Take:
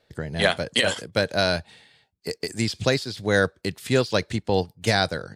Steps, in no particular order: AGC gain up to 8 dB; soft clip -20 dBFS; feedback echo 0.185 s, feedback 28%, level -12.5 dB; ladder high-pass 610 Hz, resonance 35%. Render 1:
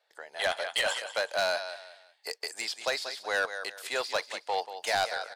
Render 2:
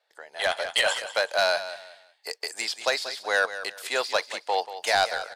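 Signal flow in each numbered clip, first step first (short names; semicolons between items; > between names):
feedback echo > AGC > ladder high-pass > soft clip; ladder high-pass > soft clip > feedback echo > AGC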